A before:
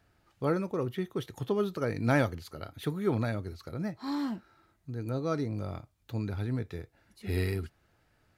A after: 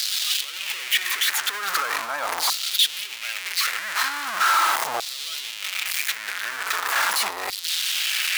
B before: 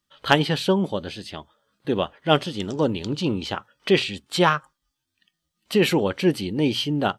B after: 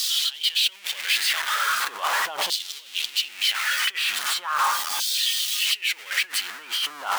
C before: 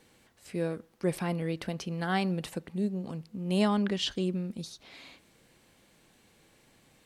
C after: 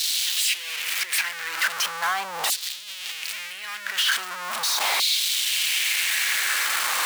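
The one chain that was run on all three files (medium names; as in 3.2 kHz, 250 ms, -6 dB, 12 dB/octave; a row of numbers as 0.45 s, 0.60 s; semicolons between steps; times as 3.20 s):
jump at every zero crossing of -20 dBFS; compressor with a negative ratio -24 dBFS, ratio -1; LFO high-pass saw down 0.4 Hz 800–4200 Hz; normalise loudness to -23 LUFS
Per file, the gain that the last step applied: +3.5 dB, -2.5 dB, +1.0 dB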